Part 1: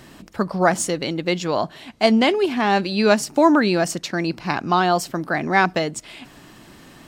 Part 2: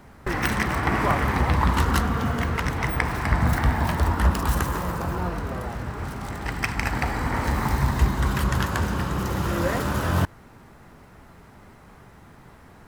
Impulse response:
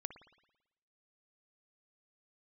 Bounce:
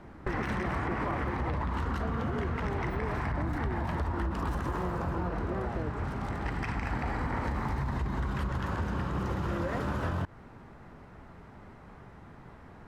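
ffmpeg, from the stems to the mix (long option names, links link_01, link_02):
-filter_complex "[0:a]bandpass=frequency=360:width_type=q:width=2.7:csg=0,acompressor=threshold=-28dB:ratio=6,volume=-4.5dB[link_01];[1:a]alimiter=limit=-17dB:level=0:latency=1:release=39,aemphasis=mode=reproduction:type=75fm,volume=-2dB[link_02];[link_01][link_02]amix=inputs=2:normalize=0,acompressor=threshold=-28dB:ratio=6"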